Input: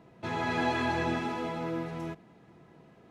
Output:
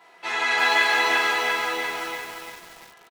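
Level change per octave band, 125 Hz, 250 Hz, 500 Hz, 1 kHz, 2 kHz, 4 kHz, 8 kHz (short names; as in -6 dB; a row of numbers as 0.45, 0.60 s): under -15 dB, -7.0 dB, +4.0 dB, +8.5 dB, +15.5 dB, +16.5 dB, +17.0 dB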